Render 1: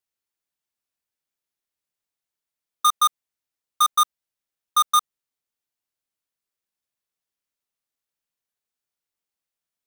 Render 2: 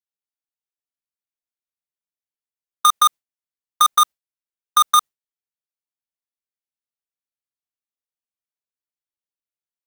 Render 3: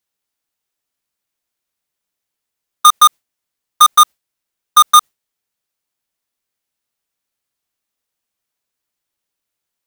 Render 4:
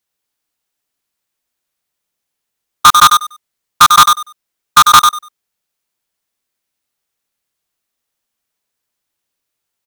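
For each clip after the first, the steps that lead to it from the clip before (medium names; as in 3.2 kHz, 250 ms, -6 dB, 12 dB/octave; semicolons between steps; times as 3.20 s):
gate with hold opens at -16 dBFS; in parallel at +0.5 dB: compressor with a negative ratio -19 dBFS, ratio -0.5
loudness maximiser +17.5 dB; trim -3 dB
feedback delay 97 ms, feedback 19%, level -4.5 dB; loudspeaker Doppler distortion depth 0.27 ms; trim +2 dB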